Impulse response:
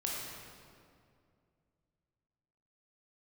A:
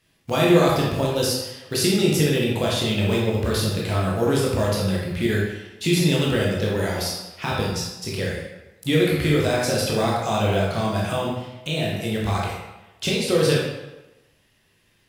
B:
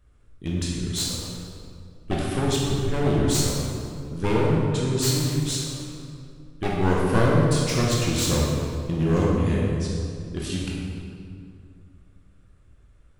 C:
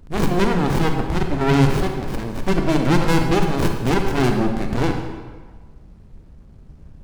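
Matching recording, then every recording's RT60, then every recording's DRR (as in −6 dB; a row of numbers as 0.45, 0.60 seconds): B; 1.0, 2.3, 1.4 seconds; −5.0, −4.0, 4.0 decibels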